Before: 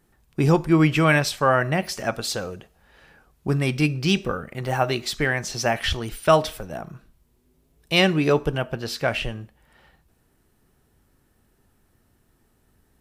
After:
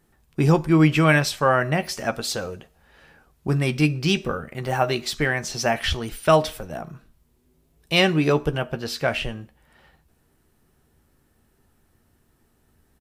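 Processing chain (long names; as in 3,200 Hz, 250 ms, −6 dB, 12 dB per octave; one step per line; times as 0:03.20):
double-tracking delay 13 ms −12 dB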